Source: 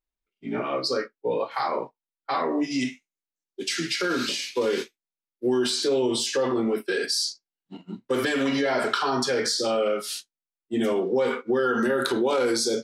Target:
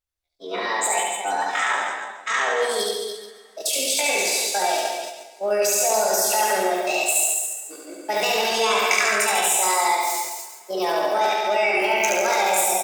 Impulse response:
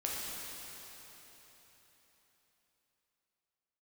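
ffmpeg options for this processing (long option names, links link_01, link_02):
-filter_complex "[0:a]tiltshelf=frequency=670:gain=-3.5,aecho=1:1:139|278|417|556:0.473|0.142|0.0426|0.0128,asplit=2[link_01][link_02];[1:a]atrim=start_sample=2205[link_03];[link_02][link_03]afir=irnorm=-1:irlink=0,volume=-22.5dB[link_04];[link_01][link_04]amix=inputs=2:normalize=0,asetrate=72056,aresample=44100,atempo=0.612027,asplit=2[link_05][link_06];[link_06]aecho=0:1:72.89|163.3|288.6:0.794|0.355|0.398[link_07];[link_05][link_07]amix=inputs=2:normalize=0"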